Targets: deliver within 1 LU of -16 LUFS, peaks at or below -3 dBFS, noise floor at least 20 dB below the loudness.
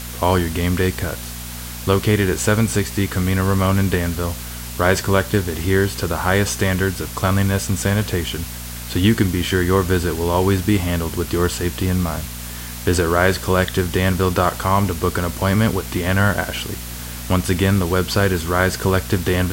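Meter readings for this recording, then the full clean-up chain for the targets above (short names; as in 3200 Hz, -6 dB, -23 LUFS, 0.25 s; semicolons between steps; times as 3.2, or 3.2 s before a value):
hum 60 Hz; harmonics up to 240 Hz; hum level -30 dBFS; noise floor -31 dBFS; noise floor target -40 dBFS; loudness -19.5 LUFS; peak -2.0 dBFS; loudness target -16.0 LUFS
-> de-hum 60 Hz, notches 4; denoiser 9 dB, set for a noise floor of -31 dBFS; gain +3.5 dB; limiter -3 dBFS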